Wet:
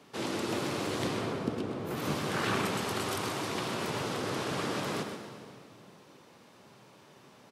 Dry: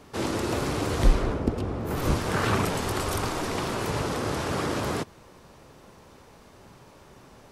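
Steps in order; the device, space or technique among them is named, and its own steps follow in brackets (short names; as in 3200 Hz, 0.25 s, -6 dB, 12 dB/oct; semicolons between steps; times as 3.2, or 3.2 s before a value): PA in a hall (HPF 120 Hz 24 dB/oct; bell 3200 Hz +4.5 dB 1.3 oct; echo 0.128 s -9 dB; reverb RT60 2.3 s, pre-delay 92 ms, DRR 8 dB); gain -6.5 dB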